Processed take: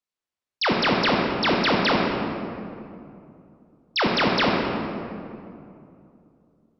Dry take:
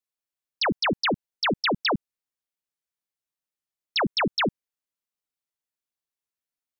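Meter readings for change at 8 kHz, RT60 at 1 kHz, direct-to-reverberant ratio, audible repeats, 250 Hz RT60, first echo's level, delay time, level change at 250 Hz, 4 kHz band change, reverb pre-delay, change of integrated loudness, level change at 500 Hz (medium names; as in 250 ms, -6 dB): no reading, 2.4 s, -1.5 dB, no echo, 3.2 s, no echo, no echo, +6.0 dB, +2.5 dB, 17 ms, +3.0 dB, +5.5 dB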